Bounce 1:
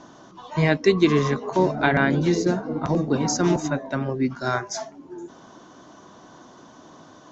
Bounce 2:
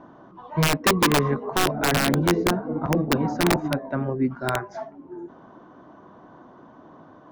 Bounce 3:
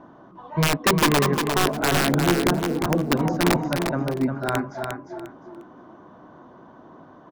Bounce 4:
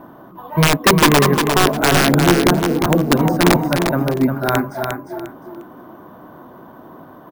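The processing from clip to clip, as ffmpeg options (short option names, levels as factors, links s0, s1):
-af "lowpass=1500,aeval=exprs='(mod(3.98*val(0)+1,2)-1)/3.98':c=same"
-af "aecho=1:1:353|706|1059:0.501|0.11|0.0243"
-af "acrusher=samples=3:mix=1:aa=0.000001,volume=2.24"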